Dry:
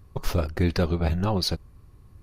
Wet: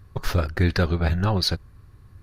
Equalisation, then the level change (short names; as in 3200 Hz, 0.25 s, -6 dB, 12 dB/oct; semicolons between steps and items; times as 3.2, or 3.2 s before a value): fifteen-band EQ 100 Hz +5 dB, 1600 Hz +9 dB, 4000 Hz +4 dB; 0.0 dB